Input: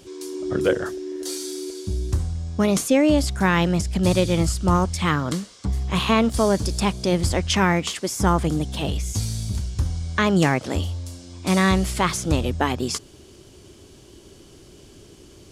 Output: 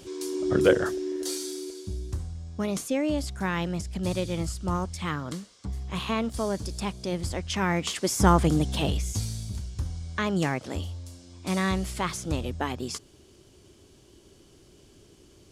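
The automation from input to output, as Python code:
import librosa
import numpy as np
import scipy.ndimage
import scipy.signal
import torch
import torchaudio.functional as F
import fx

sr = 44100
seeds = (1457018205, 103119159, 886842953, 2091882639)

y = fx.gain(x, sr, db=fx.line((1.06, 0.5), (2.1, -9.5), (7.52, -9.5), (8.08, 0.0), (8.77, 0.0), (9.49, -8.0)))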